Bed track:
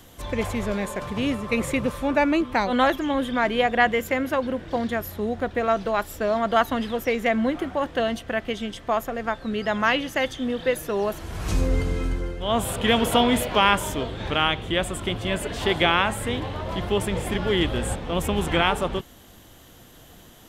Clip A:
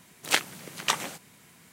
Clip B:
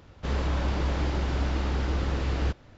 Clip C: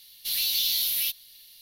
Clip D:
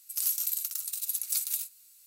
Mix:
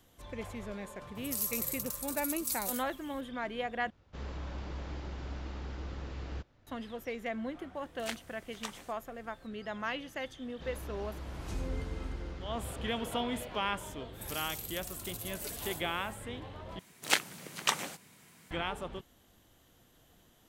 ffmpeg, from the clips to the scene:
-filter_complex "[4:a]asplit=2[s0][s1];[2:a]asplit=2[s2][s3];[1:a]asplit=2[s4][s5];[0:a]volume=0.178[s6];[s1]acrossover=split=3400[s7][s8];[s8]acompressor=threshold=0.0126:ratio=4:attack=1:release=60[s9];[s7][s9]amix=inputs=2:normalize=0[s10];[s6]asplit=3[s11][s12][s13];[s11]atrim=end=3.904[s14];[s2]atrim=end=2.77,asetpts=PTS-STARTPTS,volume=0.211[s15];[s12]atrim=start=6.666:end=16.794[s16];[s5]atrim=end=1.72,asetpts=PTS-STARTPTS,volume=0.668[s17];[s13]atrim=start=18.506[s18];[s0]atrim=end=2.06,asetpts=PTS-STARTPTS,volume=0.531,afade=t=in:d=0.004:c=hsin,afade=t=out:st=2.056:d=0.004:c=hsin,adelay=1150[s19];[s4]atrim=end=1.72,asetpts=PTS-STARTPTS,volume=0.158,afade=t=in:d=0.004:c=hsin,afade=t=out:st=1.716:d=0.004:c=hsin,adelay=7750[s20];[s3]atrim=end=2.77,asetpts=PTS-STARTPTS,volume=0.15,afade=t=in:d=0.004:c=hsin,afade=t=out:st=2.766:d=0.004:c=hsin,adelay=10370[s21];[s10]atrim=end=2.06,asetpts=PTS-STARTPTS,volume=0.841,afade=t=in:d=0.05,afade=t=out:st=2.01:d=0.05,adelay=622692S[s22];[s14][s15]acrossfade=d=0.004:c1=hsin:c2=hsin[s23];[s23][s16]acrossfade=d=0.004:c1=hsin:c2=hsin[s24];[s24][s17]acrossfade=d=0.004:c1=hsin:c2=hsin[s25];[s25][s18]acrossfade=d=0.004:c1=hsin:c2=hsin[s26];[s26][s19][s20][s21][s22]amix=inputs=5:normalize=0"

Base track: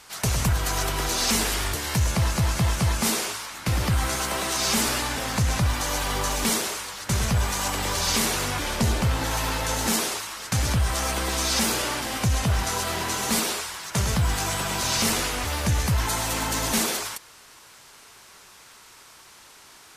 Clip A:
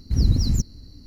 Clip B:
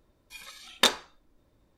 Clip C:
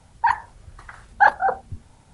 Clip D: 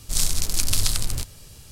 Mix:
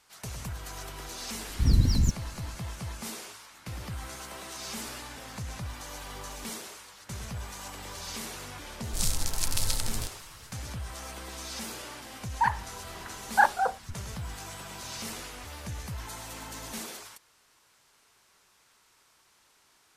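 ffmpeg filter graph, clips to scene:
-filter_complex "[0:a]volume=0.178[s0];[1:a]atrim=end=1.06,asetpts=PTS-STARTPTS,volume=0.708,afade=t=in:d=0.004:c=hsin,afade=t=out:st=1.056:d=0.004:c=hsin,adelay=1490[s1];[4:a]atrim=end=1.71,asetpts=PTS-STARTPTS,volume=0.447,afade=t=in:d=0.004:c=hsin,afade=t=out:st=1.706:d=0.004:c=hsin,adelay=8840[s2];[3:a]atrim=end=2.13,asetpts=PTS-STARTPTS,volume=0.501,afade=t=in:d=0.004:c=hsin,afade=t=out:st=2.126:d=0.004:c=hsin,adelay=12170[s3];[s0][s1][s2][s3]amix=inputs=4:normalize=0"

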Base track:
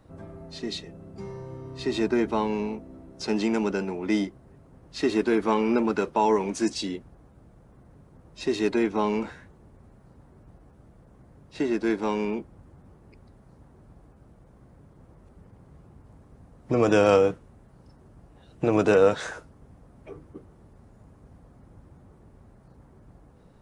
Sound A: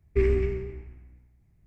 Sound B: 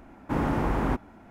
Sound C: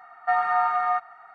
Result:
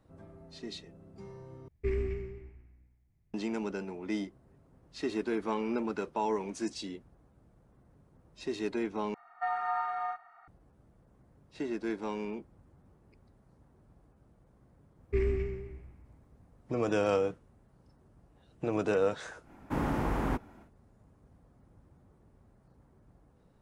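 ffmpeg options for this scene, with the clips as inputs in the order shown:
-filter_complex "[1:a]asplit=2[s0][s1];[0:a]volume=0.335[s2];[3:a]asplit=2[s3][s4];[s4]adelay=34,volume=0.531[s5];[s3][s5]amix=inputs=2:normalize=0[s6];[2:a]highshelf=f=5100:g=5.5[s7];[s2]asplit=3[s8][s9][s10];[s8]atrim=end=1.684[s11];[s0]atrim=end=1.66,asetpts=PTS-STARTPTS,volume=0.355[s12];[s9]atrim=start=3.336:end=9.144[s13];[s6]atrim=end=1.34,asetpts=PTS-STARTPTS,volume=0.299[s14];[s10]atrim=start=10.476[s15];[s1]atrim=end=1.66,asetpts=PTS-STARTPTS,volume=0.473,afade=t=in:d=0.004:c=hsin,afade=t=out:st=1.656:d=0.004:c=hsin,adelay=14970[s16];[s7]atrim=end=1.3,asetpts=PTS-STARTPTS,volume=0.562,afade=t=in:d=0.1,afade=t=out:st=1.2:d=0.1,adelay=19410[s17];[s11][s12]acrossfade=d=0.004:c1=hsin:c2=hsin[s18];[s18][s13]acrossfade=d=0.004:c1=hsin:c2=hsin[s19];[s19][s14]acrossfade=d=0.004:c1=hsin:c2=hsin[s20];[s20][s15]acrossfade=d=0.004:c1=hsin:c2=hsin[s21];[s21][s16][s17]amix=inputs=3:normalize=0"

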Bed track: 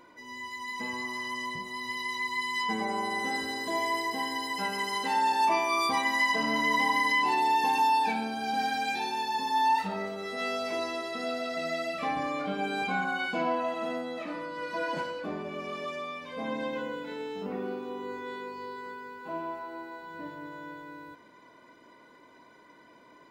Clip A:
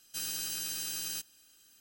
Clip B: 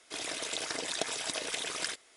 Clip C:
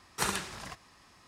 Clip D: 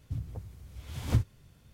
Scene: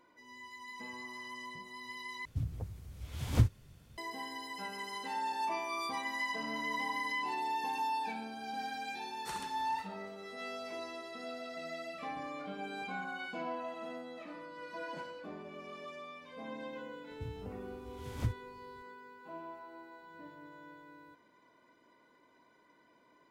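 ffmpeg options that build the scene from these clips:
-filter_complex "[4:a]asplit=2[s0][s1];[0:a]volume=0.299,asplit=2[s2][s3];[s2]atrim=end=2.254[s4];[s0]atrim=end=1.73[s5];[s3]atrim=start=3.976[s6];[3:a]atrim=end=1.27,asetpts=PTS-STARTPTS,volume=0.188,afade=t=in:d=0.004:c=hsin,afade=t=out:st=1.266:d=0.004:c=hsin,adelay=9070[s7];[s1]atrim=end=1.73,asetpts=PTS-STARTPTS,volume=0.398,afade=t=in:d=0.004:c=hsin,afade=t=out:st=1.726:d=0.004:c=hsin,adelay=17100[s8];[s4][s5]acrossfade=d=0.004:c1=hsin:c2=hsin[s9];[s9][s6]acrossfade=d=0.004:c1=hsin:c2=hsin[s10];[s10][s7][s8]amix=inputs=3:normalize=0"

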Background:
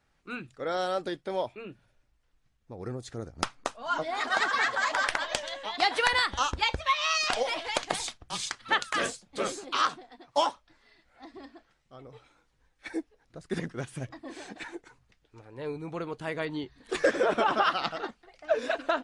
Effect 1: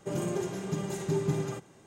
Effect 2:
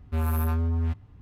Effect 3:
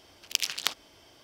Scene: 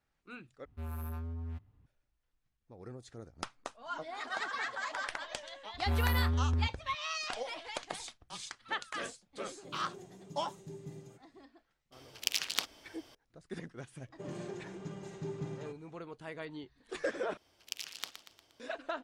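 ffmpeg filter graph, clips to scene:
-filter_complex "[2:a]asplit=2[s0][s1];[1:a]asplit=2[s2][s3];[3:a]asplit=2[s4][s5];[0:a]volume=0.299[s6];[s2]equalizer=f=1400:t=o:w=1.5:g=-10[s7];[s4]acontrast=71[s8];[s3]lowpass=5600[s9];[s5]aecho=1:1:118|236|354|472|590:0.299|0.146|0.0717|0.0351|0.0172[s10];[s6]asplit=3[s11][s12][s13];[s11]atrim=end=0.654[s14];[s0]atrim=end=1.21,asetpts=PTS-STARTPTS,volume=0.188[s15];[s12]atrim=start=1.856:end=17.374[s16];[s10]atrim=end=1.23,asetpts=PTS-STARTPTS,volume=0.224[s17];[s13]atrim=start=18.596[s18];[s1]atrim=end=1.21,asetpts=PTS-STARTPTS,volume=0.562,afade=t=in:d=0.004:c=hsin,afade=t=out:st=1.206:d=0.004:c=hsin,adelay=5740[s19];[s7]atrim=end=1.86,asetpts=PTS-STARTPTS,volume=0.141,afade=t=in:d=0.004:c=hsin,afade=t=out:st=1.856:d=0.004:c=hsin,adelay=9580[s20];[s8]atrim=end=1.23,asetpts=PTS-STARTPTS,volume=0.376,afade=t=in:d=0.004:c=hsin,afade=t=out:st=1.226:d=0.004:c=hsin,adelay=11920[s21];[s9]atrim=end=1.86,asetpts=PTS-STARTPTS,volume=0.282,afade=t=in:d=0.004:c=hsin,afade=t=out:st=1.856:d=0.004:c=hsin,adelay=14130[s22];[s14][s15]acrossfade=d=0.004:c1=hsin:c2=hsin[s23];[s23][s16]acrossfade=d=0.004:c1=hsin:c2=hsin[s24];[s24][s17]acrossfade=d=0.004:c1=hsin:c2=hsin[s25];[s25][s18]acrossfade=d=0.004:c1=hsin:c2=hsin[s26];[s26][s19][s20][s21][s22]amix=inputs=5:normalize=0"

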